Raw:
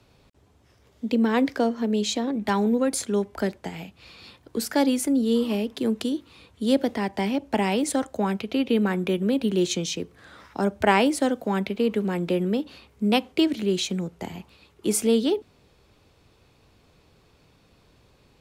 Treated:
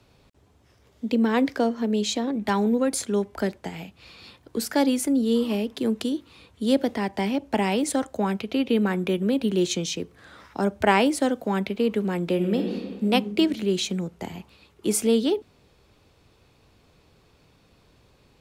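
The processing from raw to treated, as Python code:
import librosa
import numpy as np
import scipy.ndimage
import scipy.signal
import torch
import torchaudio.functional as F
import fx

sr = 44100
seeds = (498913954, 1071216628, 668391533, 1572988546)

y = fx.reverb_throw(x, sr, start_s=12.34, length_s=0.74, rt60_s=1.7, drr_db=3.0)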